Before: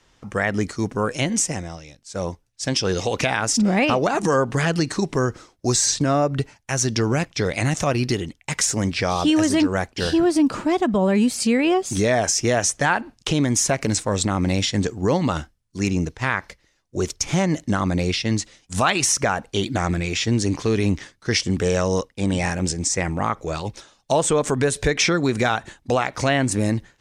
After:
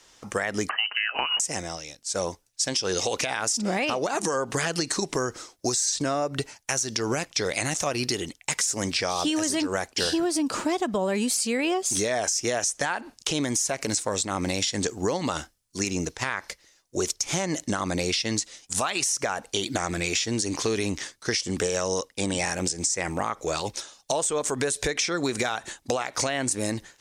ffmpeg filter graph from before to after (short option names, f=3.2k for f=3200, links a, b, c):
-filter_complex "[0:a]asettb=1/sr,asplit=3[a][b][c];[a]atrim=end=0.694[d];[b]atrim=start=0.69:end=1.4,asetpts=PTS-STARTPTS,afade=t=in:d=0.004:c=qsin,afade=t=out:st=0.706:d=0.004:c=qsin,equalizer=f=2.2k:t=o:w=2.5:g=12,lowpass=f=2.6k:t=q:w=0.5098,lowpass=f=2.6k:t=q:w=0.6013,lowpass=f=2.6k:t=q:w=0.9,lowpass=f=2.6k:t=q:w=2.563,afreqshift=-3100[e];[c]atrim=start=1.396[f];[d][e]acrossfade=d=0.004:c1=hsin:c2=qsin[g];[g][f]acrossfade=d=0.004:c1=qsin:c2=hsin,bass=f=250:g=-10,treble=f=4k:g=9,alimiter=limit=-11.5dB:level=0:latency=1:release=158,acompressor=threshold=-25dB:ratio=4,volume=2dB"